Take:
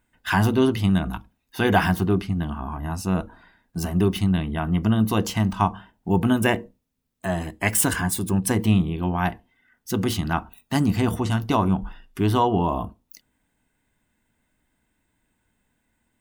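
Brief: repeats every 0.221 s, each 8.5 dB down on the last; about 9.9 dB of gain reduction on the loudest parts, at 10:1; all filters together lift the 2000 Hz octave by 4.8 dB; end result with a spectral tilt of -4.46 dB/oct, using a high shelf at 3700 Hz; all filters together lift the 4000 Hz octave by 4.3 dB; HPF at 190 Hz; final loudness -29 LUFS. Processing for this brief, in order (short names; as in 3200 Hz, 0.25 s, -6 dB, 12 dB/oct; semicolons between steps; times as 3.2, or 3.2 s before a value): HPF 190 Hz; bell 2000 Hz +6 dB; high shelf 3700 Hz -3.5 dB; bell 4000 Hz +5.5 dB; compressor 10:1, threshold -23 dBFS; feedback echo 0.221 s, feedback 38%, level -8.5 dB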